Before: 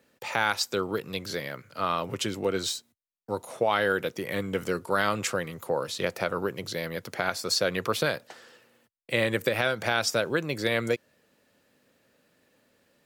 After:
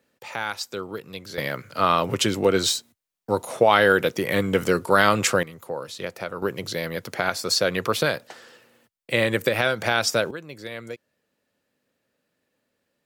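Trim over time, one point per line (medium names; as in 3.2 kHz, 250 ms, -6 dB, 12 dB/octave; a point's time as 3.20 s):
-3.5 dB
from 1.38 s +8 dB
from 5.43 s -3 dB
from 6.42 s +4 dB
from 10.31 s -9 dB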